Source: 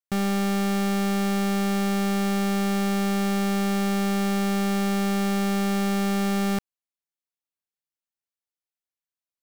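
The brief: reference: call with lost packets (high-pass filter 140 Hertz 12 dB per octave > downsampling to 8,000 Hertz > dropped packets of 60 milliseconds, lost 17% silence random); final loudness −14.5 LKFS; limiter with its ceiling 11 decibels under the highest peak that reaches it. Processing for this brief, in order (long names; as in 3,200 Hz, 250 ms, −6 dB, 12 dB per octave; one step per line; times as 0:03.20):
brickwall limiter −34.5 dBFS
high-pass filter 140 Hz 12 dB per octave
downsampling to 8,000 Hz
dropped packets of 60 ms, lost 17% silence random
level +22.5 dB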